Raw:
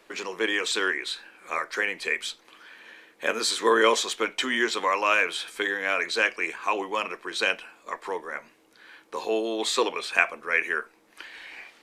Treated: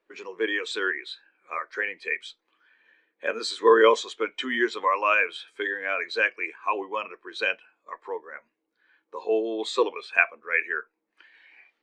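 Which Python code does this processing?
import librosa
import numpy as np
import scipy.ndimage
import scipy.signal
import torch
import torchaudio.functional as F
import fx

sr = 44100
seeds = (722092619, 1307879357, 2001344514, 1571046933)

y = scipy.signal.sosfilt(scipy.signal.bessel(2, 8600.0, 'lowpass', norm='mag', fs=sr, output='sos'), x)
y = fx.spectral_expand(y, sr, expansion=1.5)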